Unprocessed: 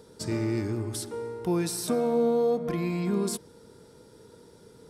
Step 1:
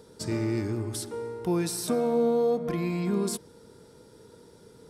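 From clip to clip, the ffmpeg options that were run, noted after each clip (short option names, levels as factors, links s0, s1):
-af anull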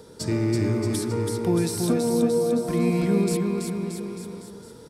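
-filter_complex "[0:a]acrossover=split=350[s0][s1];[s1]acompressor=threshold=0.0178:ratio=6[s2];[s0][s2]amix=inputs=2:normalize=0,aecho=1:1:330|627|894.3|1135|1351:0.631|0.398|0.251|0.158|0.1,volume=1.88"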